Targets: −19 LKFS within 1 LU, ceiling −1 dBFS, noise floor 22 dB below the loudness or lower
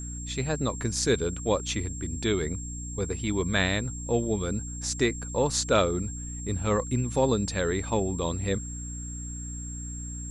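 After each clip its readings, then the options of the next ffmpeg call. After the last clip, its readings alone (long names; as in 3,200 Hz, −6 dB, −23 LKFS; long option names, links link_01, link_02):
mains hum 60 Hz; hum harmonics up to 300 Hz; level of the hum −35 dBFS; interfering tone 7,500 Hz; level of the tone −39 dBFS; integrated loudness −28.5 LKFS; sample peak −8.0 dBFS; target loudness −19.0 LKFS
→ -af "bandreject=frequency=60:width_type=h:width=4,bandreject=frequency=120:width_type=h:width=4,bandreject=frequency=180:width_type=h:width=4,bandreject=frequency=240:width_type=h:width=4,bandreject=frequency=300:width_type=h:width=4"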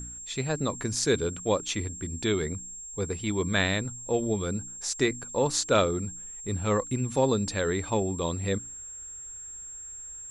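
mains hum none found; interfering tone 7,500 Hz; level of the tone −39 dBFS
→ -af "bandreject=frequency=7500:width=30"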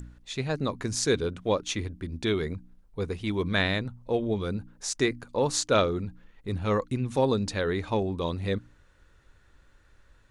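interfering tone none found; integrated loudness −29.0 LKFS; sample peak −8.5 dBFS; target loudness −19.0 LKFS
→ -af "volume=10dB,alimiter=limit=-1dB:level=0:latency=1"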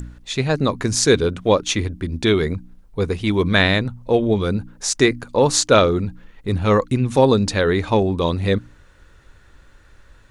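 integrated loudness −19.0 LKFS; sample peak −1.0 dBFS; background noise floor −50 dBFS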